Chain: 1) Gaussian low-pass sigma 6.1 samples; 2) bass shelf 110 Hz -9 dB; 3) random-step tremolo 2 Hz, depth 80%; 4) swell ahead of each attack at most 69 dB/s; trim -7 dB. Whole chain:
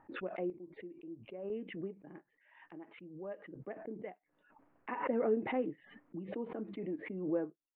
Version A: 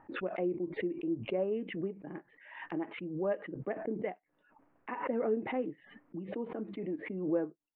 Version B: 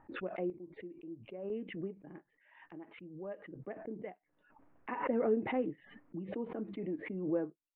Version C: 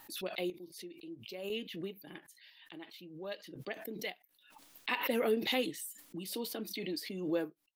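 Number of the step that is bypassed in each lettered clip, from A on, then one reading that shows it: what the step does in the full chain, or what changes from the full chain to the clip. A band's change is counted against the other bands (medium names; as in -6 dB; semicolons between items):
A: 3, momentary loudness spread change -5 LU; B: 2, 125 Hz band +2.0 dB; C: 1, 2 kHz band +7.0 dB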